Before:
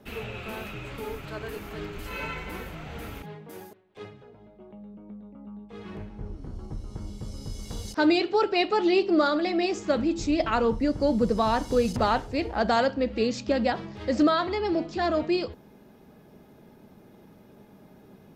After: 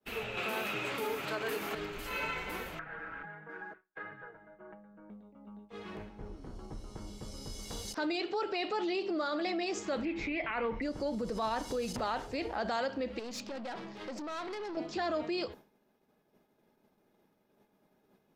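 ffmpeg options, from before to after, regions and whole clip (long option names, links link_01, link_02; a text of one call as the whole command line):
ffmpeg -i in.wav -filter_complex "[0:a]asettb=1/sr,asplit=3[link_01][link_02][link_03];[link_01]atrim=end=0.374[link_04];[link_02]atrim=start=0.37:end=1.75,asetpts=PTS-STARTPTS,afade=type=in:duration=0.004:curve=qsin,afade=type=out:start_time=1.376:duration=0.004:curve=qsin,highpass=150,acontrast=50[link_05];[link_03]atrim=start=1.746[link_06];[link_04][link_05]acrossfade=duration=0.004:curve1=hsin:curve2=qsin[link_07];[link_07][link_06]acrossfade=duration=0.004:curve1=qsin:curve2=hsin,asettb=1/sr,asplit=3[link_08][link_09][link_10];[link_08]atrim=end=2.794[link_11];[link_09]atrim=start=2.79:end=5.1,asetpts=PTS-STARTPTS,afade=type=in:duration=0.004:curve=qsin,afade=type=out:start_time=2.306:duration=0.004:curve=qsin,aecho=1:1:6.2:0.89,atrim=end_sample=101871,acompressor=threshold=-42dB:ratio=12:attack=3.2:release=140:knee=1:detection=peak,lowpass=frequency=1600:width_type=q:width=8.5[link_12];[link_10]atrim=start=5.096[link_13];[link_11][link_12]acrossfade=duration=0.004:curve1=hsin:curve2=qsin[link_14];[link_14][link_13]acrossfade=duration=0.004:curve1=qsin:curve2=hsin,asettb=1/sr,asplit=3[link_15][link_16][link_17];[link_15]atrim=end=10.054[link_18];[link_16]atrim=start=10.05:end=10.82,asetpts=PTS-STARTPTS,afade=type=in:duration=0.004:curve=qsin,afade=type=out:start_time=0.766:duration=0.004:curve=qsin,lowpass=frequency=2200:width_type=q:width=7.3,bandreject=frequency=1300:width=16[link_19];[link_17]atrim=start=10.816[link_20];[link_18][link_19]acrossfade=duration=0.004:curve1=hsin:curve2=qsin[link_21];[link_21][link_20]acrossfade=duration=0.004:curve1=qsin:curve2=hsin,asettb=1/sr,asplit=3[link_22][link_23][link_24];[link_22]atrim=end=13.194[link_25];[link_23]atrim=start=13.19:end=14.77,asetpts=PTS-STARTPTS,afade=type=in:duration=0.004:curve=qsin,afade=type=out:start_time=1.576:duration=0.004:curve=qsin,lowshelf=frequency=130:width_type=q:width=1.5:gain=-8.5,acompressor=threshold=-29dB:ratio=12:attack=3.2:release=140:knee=1:detection=peak,aeval=exprs='(tanh(50.1*val(0)+0.2)-tanh(0.2))/50.1':channel_layout=same[link_26];[link_24]atrim=start=14.766[link_27];[link_25][link_26]acrossfade=duration=0.004:curve1=hsin:curve2=qsin[link_28];[link_28][link_27]acrossfade=duration=0.004:curve1=qsin:curve2=hsin,alimiter=limit=-24dB:level=0:latency=1:release=63,equalizer=frequency=76:width=0.35:gain=-11.5,agate=range=-33dB:threshold=-46dB:ratio=3:detection=peak" out.wav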